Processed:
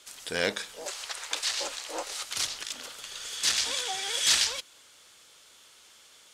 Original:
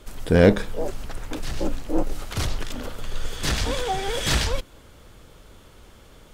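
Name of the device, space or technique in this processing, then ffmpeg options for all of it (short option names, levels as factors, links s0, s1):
piezo pickup straight into a mixer: -filter_complex "[0:a]asettb=1/sr,asplit=3[s0][s1][s2];[s0]atrim=end=0.864[s3];[s1]atrim=start=0.86:end=2.23,asetpts=PTS-STARTPTS,afade=t=in:d=0.004:c=qsin,afade=t=out:st=1.366:d=0.004:c=qsin,equalizer=f=125:t=o:w=1:g=-10,equalizer=f=250:t=o:w=1:g=-8,equalizer=f=500:t=o:w=1:g=6,equalizer=f=1000:t=o:w=1:g=7,equalizer=f=2000:t=o:w=1:g=5,equalizer=f=4000:t=o:w=1:g=6,equalizer=f=8000:t=o:w=1:g=4[s4];[s2]atrim=start=2.226[s5];[s3][s4]acrossfade=d=0.004:c1=hsin:c2=qsin[s6];[s6][s5]acrossfade=d=0.004:c1=qsin:c2=hsin,lowpass=7100,aderivative,volume=2.66"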